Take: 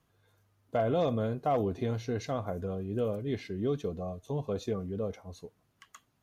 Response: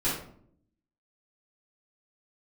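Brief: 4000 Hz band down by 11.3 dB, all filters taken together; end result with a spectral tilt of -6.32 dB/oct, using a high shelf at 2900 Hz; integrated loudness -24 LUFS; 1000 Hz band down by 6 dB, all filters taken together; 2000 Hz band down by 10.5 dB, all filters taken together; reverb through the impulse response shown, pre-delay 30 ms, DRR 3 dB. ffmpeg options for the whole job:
-filter_complex "[0:a]equalizer=f=1k:t=o:g=-8.5,equalizer=f=2k:t=o:g=-7,highshelf=f=2.9k:g=-6,equalizer=f=4k:t=o:g=-6.5,asplit=2[a][b];[1:a]atrim=start_sample=2205,adelay=30[c];[b][c]afir=irnorm=-1:irlink=0,volume=-12.5dB[d];[a][d]amix=inputs=2:normalize=0,volume=7.5dB"

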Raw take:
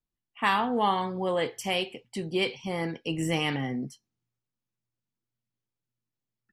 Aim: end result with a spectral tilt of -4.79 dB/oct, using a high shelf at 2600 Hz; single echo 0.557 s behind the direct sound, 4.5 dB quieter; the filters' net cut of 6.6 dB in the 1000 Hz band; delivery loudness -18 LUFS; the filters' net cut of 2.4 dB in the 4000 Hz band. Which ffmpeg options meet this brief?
-af "equalizer=f=1k:t=o:g=-8.5,highshelf=f=2.6k:g=3,equalizer=f=4k:t=o:g=-5.5,aecho=1:1:557:0.596,volume=12.5dB"

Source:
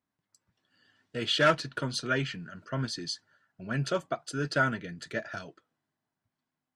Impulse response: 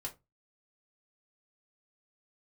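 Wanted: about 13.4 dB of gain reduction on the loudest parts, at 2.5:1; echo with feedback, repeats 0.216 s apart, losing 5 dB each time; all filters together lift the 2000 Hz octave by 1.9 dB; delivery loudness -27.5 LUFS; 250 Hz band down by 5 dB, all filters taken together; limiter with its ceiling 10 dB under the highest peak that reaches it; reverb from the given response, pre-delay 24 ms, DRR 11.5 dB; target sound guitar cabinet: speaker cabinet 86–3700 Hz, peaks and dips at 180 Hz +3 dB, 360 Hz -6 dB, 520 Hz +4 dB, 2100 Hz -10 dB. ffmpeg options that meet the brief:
-filter_complex "[0:a]equalizer=f=250:t=o:g=-6.5,equalizer=f=2k:t=o:g=6,acompressor=threshold=-38dB:ratio=2.5,alimiter=level_in=8.5dB:limit=-24dB:level=0:latency=1,volume=-8.5dB,aecho=1:1:216|432|648|864|1080|1296|1512:0.562|0.315|0.176|0.0988|0.0553|0.031|0.0173,asplit=2[a][b];[1:a]atrim=start_sample=2205,adelay=24[c];[b][c]afir=irnorm=-1:irlink=0,volume=-10dB[d];[a][d]amix=inputs=2:normalize=0,highpass=86,equalizer=f=180:t=q:w=4:g=3,equalizer=f=360:t=q:w=4:g=-6,equalizer=f=520:t=q:w=4:g=4,equalizer=f=2.1k:t=q:w=4:g=-10,lowpass=f=3.7k:w=0.5412,lowpass=f=3.7k:w=1.3066,volume=16dB"

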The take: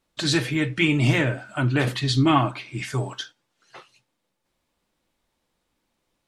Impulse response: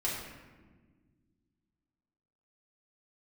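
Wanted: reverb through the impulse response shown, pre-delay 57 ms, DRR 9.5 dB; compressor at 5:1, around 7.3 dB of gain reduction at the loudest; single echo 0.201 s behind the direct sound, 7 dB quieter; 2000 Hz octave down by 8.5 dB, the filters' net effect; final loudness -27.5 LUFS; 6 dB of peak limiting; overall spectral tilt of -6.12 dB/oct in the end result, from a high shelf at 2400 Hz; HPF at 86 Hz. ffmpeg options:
-filter_complex "[0:a]highpass=86,equalizer=f=2k:t=o:g=-6.5,highshelf=f=2.4k:g=-8,acompressor=threshold=-23dB:ratio=5,alimiter=limit=-21dB:level=0:latency=1,aecho=1:1:201:0.447,asplit=2[a][b];[1:a]atrim=start_sample=2205,adelay=57[c];[b][c]afir=irnorm=-1:irlink=0,volume=-15dB[d];[a][d]amix=inputs=2:normalize=0,volume=2dB"

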